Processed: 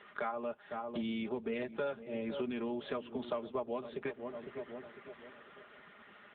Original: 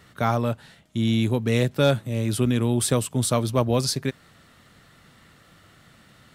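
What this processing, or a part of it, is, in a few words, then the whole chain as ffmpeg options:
voicemail: -filter_complex "[0:a]asplit=3[s0][s1][s2];[s0]afade=t=out:st=2.52:d=0.02[s3];[s1]lowpass=f=6600:w=0.5412,lowpass=f=6600:w=1.3066,afade=t=in:st=2.52:d=0.02,afade=t=out:st=3.27:d=0.02[s4];[s2]afade=t=in:st=3.27:d=0.02[s5];[s3][s4][s5]amix=inputs=3:normalize=0,highpass=f=68:w=0.5412,highpass=f=68:w=1.3066,highpass=370,lowpass=3000,aecho=1:1:4.9:0.63,asplit=2[s6][s7];[s7]adelay=503,lowpass=f=950:p=1,volume=0.2,asplit=2[s8][s9];[s9]adelay=503,lowpass=f=950:p=1,volume=0.45,asplit=2[s10][s11];[s11]adelay=503,lowpass=f=950:p=1,volume=0.45,asplit=2[s12][s13];[s13]adelay=503,lowpass=f=950:p=1,volume=0.45[s14];[s6][s8][s10][s12][s14]amix=inputs=5:normalize=0,acompressor=threshold=0.0141:ratio=6,volume=1.33" -ar 8000 -c:a libopencore_amrnb -b:a 6700

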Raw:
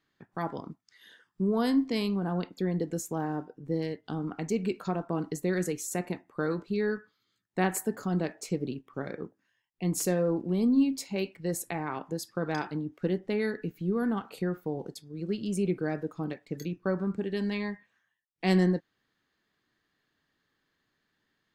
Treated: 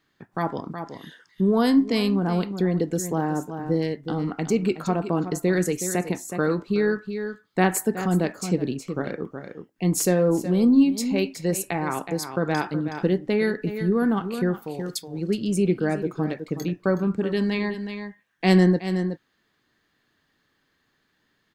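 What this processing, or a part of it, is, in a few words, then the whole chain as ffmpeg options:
ducked delay: -filter_complex "[0:a]asettb=1/sr,asplit=3[s0][s1][s2];[s0]atrim=end=14.624[s3];[s1]atrim=start=14.62:end=15.08,asetpts=PTS-STARTPTS,afade=t=in:d=0.004:c=qsin,afade=t=out:st=0.456:d=0.004:c=qsin,tiltshelf=f=1400:g=-9[s4];[s2]atrim=start=15.076[s5];[s3][s4]acrossfade=d=0.004:c1=hsin:c2=qsin[s6];[s6][s5]acrossfade=d=0.004:c1=qsin:c2=hsin,asplit=3[s7][s8][s9];[s8]adelay=370,volume=0.398[s10];[s9]apad=whole_len=966531[s11];[s10][s11]sidechaincompress=threshold=0.02:ratio=8:attack=28:release=220[s12];[s7][s12]amix=inputs=2:normalize=0,volume=2.24"

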